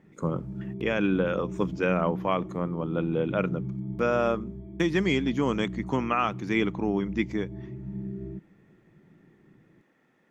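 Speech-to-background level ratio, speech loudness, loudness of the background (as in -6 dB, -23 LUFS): 9.5 dB, -28.0 LUFS, -37.5 LUFS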